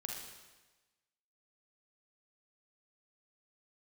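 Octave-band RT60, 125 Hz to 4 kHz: 1.2, 1.1, 1.2, 1.2, 1.2, 1.2 s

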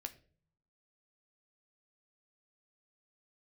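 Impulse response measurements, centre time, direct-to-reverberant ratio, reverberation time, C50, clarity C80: 5 ms, 6.5 dB, 0.45 s, 16.5 dB, 20.5 dB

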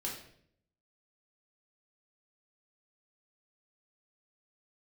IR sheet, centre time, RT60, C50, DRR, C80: 37 ms, 0.65 s, 5.0 dB, -3.0 dB, 8.5 dB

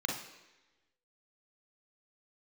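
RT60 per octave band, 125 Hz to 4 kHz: 0.85, 1.0, 1.1, 1.0, 1.2, 1.1 s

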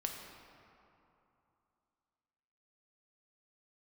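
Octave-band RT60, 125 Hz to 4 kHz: 3.0, 3.0, 2.7, 3.0, 2.2, 1.5 s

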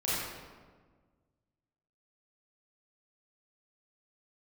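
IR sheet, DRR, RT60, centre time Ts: -10.0 dB, 1.5 s, 0.112 s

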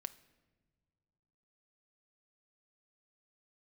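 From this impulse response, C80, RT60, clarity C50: 19.5 dB, not exponential, 17.5 dB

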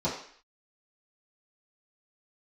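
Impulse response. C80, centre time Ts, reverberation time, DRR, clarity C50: 9.0 dB, 34 ms, 0.55 s, -11.0 dB, 5.5 dB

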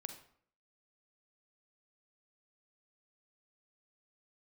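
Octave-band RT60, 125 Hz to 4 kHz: 0.60, 0.65, 0.60, 0.55, 0.50, 0.40 s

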